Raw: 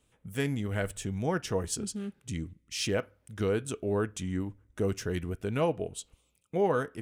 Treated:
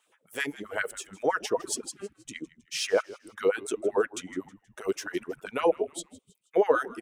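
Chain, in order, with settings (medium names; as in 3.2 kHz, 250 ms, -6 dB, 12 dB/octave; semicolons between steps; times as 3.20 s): LFO high-pass sine 7.7 Hz 350–1700 Hz; reverb removal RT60 1.8 s; frequency-shifting echo 159 ms, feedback 45%, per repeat -81 Hz, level -19.5 dB; trim +2 dB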